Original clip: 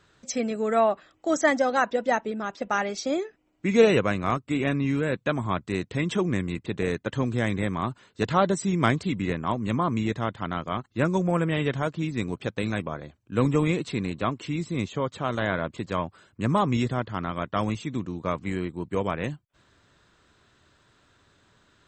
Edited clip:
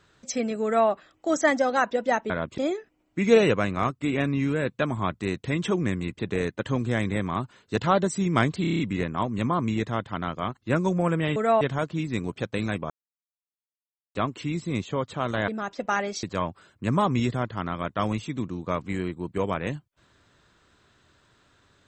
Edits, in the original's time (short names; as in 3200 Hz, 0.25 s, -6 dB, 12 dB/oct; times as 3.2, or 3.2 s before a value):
0.64–0.89 copy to 11.65
2.3–3.05 swap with 15.52–15.8
9.08 stutter 0.03 s, 7 plays
12.94–14.19 mute